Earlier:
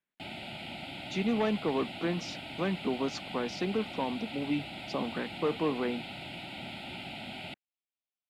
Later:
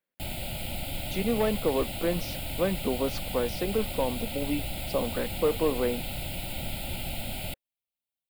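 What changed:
background: remove band-pass filter 220–3,200 Hz
master: add parametric band 530 Hz +11 dB 0.43 octaves

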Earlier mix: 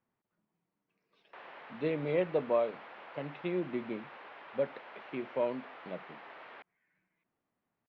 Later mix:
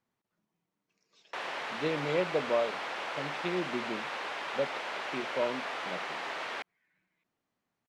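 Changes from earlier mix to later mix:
background +11.5 dB
master: remove Bessel low-pass filter 2,300 Hz, order 4

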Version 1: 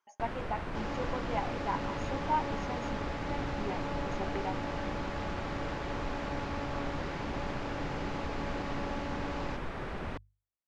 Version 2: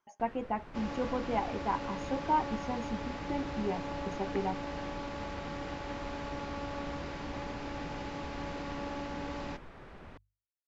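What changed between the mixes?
speech: remove high-pass filter 620 Hz 6 dB per octave
first sound −12.0 dB

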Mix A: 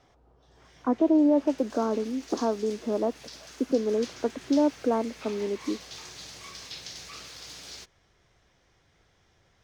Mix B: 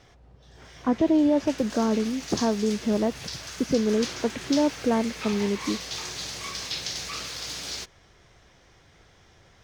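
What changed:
speech: remove Chebyshev band-pass filter 260–1,400 Hz, order 3
background +9.0 dB

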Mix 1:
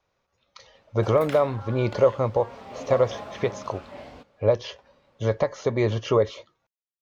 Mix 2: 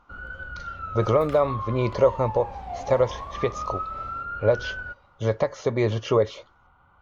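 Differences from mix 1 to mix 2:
first sound: unmuted
second sound −7.5 dB

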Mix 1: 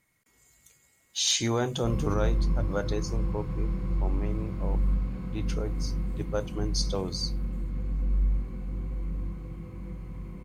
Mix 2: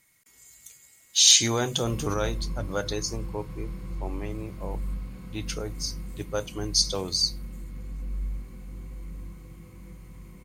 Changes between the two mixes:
background −6.5 dB
master: add high-shelf EQ 2,300 Hz +11.5 dB

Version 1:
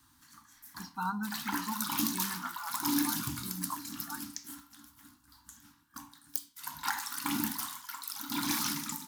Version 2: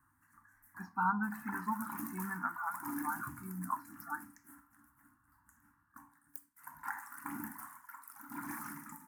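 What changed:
background −10.0 dB
master: add drawn EQ curve 430 Hz 0 dB, 1,800 Hz +5 dB, 3,600 Hz −29 dB, 9,100 Hz −3 dB

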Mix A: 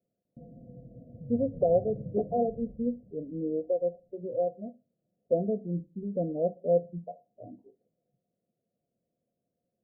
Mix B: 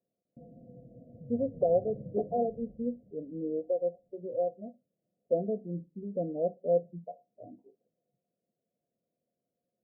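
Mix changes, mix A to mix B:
speech: send −9.0 dB
master: add low-shelf EQ 140 Hz −9.5 dB

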